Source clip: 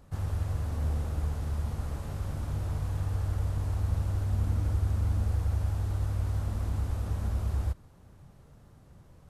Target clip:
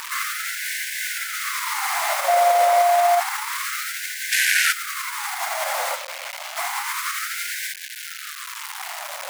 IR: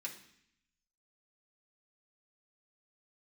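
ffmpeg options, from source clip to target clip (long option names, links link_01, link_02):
-filter_complex "[0:a]equalizer=frequency=2100:width_type=o:width=0.26:gain=11,asplit=2[link_01][link_02];[link_02]acompressor=threshold=-37dB:ratio=6,volume=-1dB[link_03];[link_01][link_03]amix=inputs=2:normalize=0,asplit=3[link_04][link_05][link_06];[link_04]afade=type=out:start_time=5.94:duration=0.02[link_07];[link_05]asplit=3[link_08][link_09][link_10];[link_08]bandpass=frequency=270:width_type=q:width=8,volume=0dB[link_11];[link_09]bandpass=frequency=2290:width_type=q:width=8,volume=-6dB[link_12];[link_10]bandpass=frequency=3010:width_type=q:width=8,volume=-9dB[link_13];[link_11][link_12][link_13]amix=inputs=3:normalize=0,afade=type=in:start_time=5.94:duration=0.02,afade=type=out:start_time=6.56:duration=0.02[link_14];[link_06]afade=type=in:start_time=6.56:duration=0.02[link_15];[link_07][link_14][link_15]amix=inputs=3:normalize=0,flanger=delay=7.6:depth=9.4:regen=65:speed=0.53:shape=sinusoidal,asettb=1/sr,asplit=3[link_16][link_17][link_18];[link_16]atrim=end=2.284[link_19];[link_17]atrim=start=2.28:end=3.2,asetpts=PTS-STARTPTS,afade=type=in:duration=0.004:curve=qsin,afade=type=out:start_time=0.916:duration=0.004:curve=qsin,aeval=exprs='val(0)+0.0126*sin(2*PI*700*n/s)':channel_layout=same[link_20];[link_18]atrim=start=3.196[link_21];[link_19][link_20]acrossfade=duration=0.004:curve1=hsin:curve2=qsin[link_22];[link_22][link_21]acrossfade=duration=0.004:curve1=qsin:curve2=hsin,asplit=3[link_23][link_24][link_25];[link_23]afade=type=out:start_time=4.31:duration=0.02[link_26];[link_24]aeval=exprs='0.0841*sin(PI/2*5.62*val(0)/0.0841)':channel_layout=same,afade=type=in:start_time=4.31:duration=0.02,afade=type=out:start_time=4.71:duration=0.02[link_27];[link_25]afade=type=in:start_time=4.71:duration=0.02[link_28];[link_26][link_27][link_28]amix=inputs=3:normalize=0,acrusher=bits=8:mix=0:aa=0.000001,alimiter=level_in=26.5dB:limit=-1dB:release=50:level=0:latency=1,afftfilt=real='re*gte(b*sr/1024,490*pow(1500/490,0.5+0.5*sin(2*PI*0.29*pts/sr)))':imag='im*gte(b*sr/1024,490*pow(1500/490,0.5+0.5*sin(2*PI*0.29*pts/sr)))':win_size=1024:overlap=0.75"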